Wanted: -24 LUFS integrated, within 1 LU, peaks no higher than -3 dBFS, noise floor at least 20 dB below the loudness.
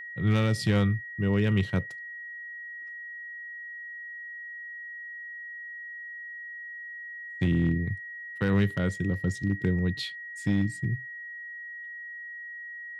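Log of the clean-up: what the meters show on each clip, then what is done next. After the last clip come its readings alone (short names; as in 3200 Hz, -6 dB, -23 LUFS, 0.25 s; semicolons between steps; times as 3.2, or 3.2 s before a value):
clipped 0.4%; flat tops at -18.0 dBFS; steady tone 1900 Hz; tone level -38 dBFS; loudness -31.0 LUFS; peak -18.0 dBFS; loudness target -24.0 LUFS
-> clip repair -18 dBFS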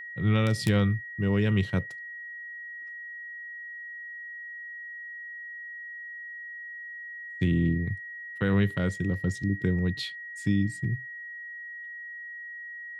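clipped 0.0%; steady tone 1900 Hz; tone level -38 dBFS
-> notch 1900 Hz, Q 30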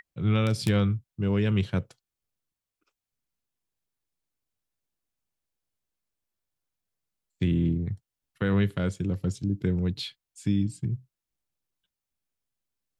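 steady tone none; loudness -28.0 LUFS; peak -9.5 dBFS; loudness target -24.0 LUFS
-> gain +4 dB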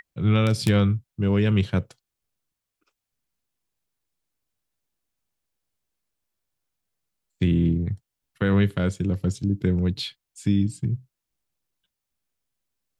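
loudness -24.0 LUFS; peak -5.5 dBFS; noise floor -85 dBFS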